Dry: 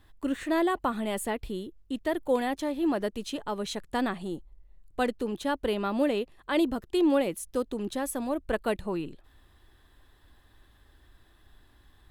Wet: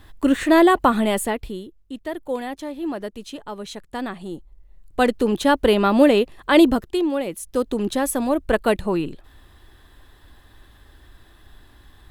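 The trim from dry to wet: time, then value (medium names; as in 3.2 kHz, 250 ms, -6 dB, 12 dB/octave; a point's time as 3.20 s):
1.00 s +12 dB
1.77 s -0.5 dB
4.00 s -0.5 dB
5.30 s +12 dB
6.74 s +12 dB
7.11 s -0.5 dB
7.72 s +9.5 dB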